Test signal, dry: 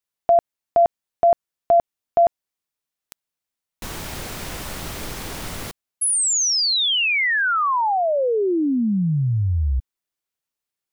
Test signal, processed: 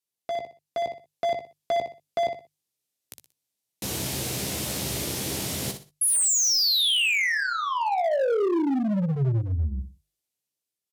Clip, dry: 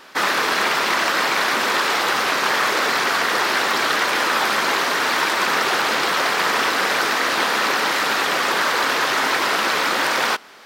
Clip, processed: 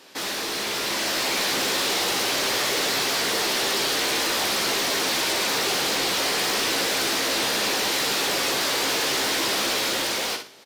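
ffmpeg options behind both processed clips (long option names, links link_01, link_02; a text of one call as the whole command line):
ffmpeg -i in.wav -filter_complex "[0:a]acrossover=split=2800[link_01][link_02];[link_01]asoftclip=type=tanh:threshold=-17.5dB[link_03];[link_03][link_02]amix=inputs=2:normalize=0,equalizer=frequency=1300:width=0.77:gain=-13,asplit=2[link_04][link_05];[link_05]adelay=15,volume=-8dB[link_06];[link_04][link_06]amix=inputs=2:normalize=0,acompressor=threshold=-23dB:ratio=16:attack=4.7:release=21:knee=6:detection=peak,highpass=frequency=89:width=0.5412,highpass=frequency=89:width=1.3066,aecho=1:1:61|122|183:0.376|0.105|0.0295,aresample=32000,aresample=44100,volume=25dB,asoftclip=hard,volume=-25dB,dynaudnorm=framelen=210:gausssize=9:maxgain=5dB,equalizer=frequency=220:width=1.7:gain=-2.5,bandreject=frequency=50:width_type=h:width=6,bandreject=frequency=100:width_type=h:width=6,bandreject=frequency=150:width_type=h:width=6" out.wav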